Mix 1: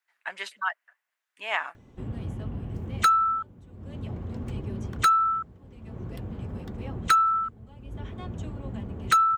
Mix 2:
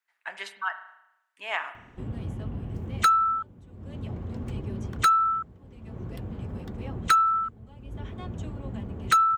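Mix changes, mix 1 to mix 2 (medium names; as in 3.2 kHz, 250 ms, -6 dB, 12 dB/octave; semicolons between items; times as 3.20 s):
speech -4.5 dB; reverb: on, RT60 0.85 s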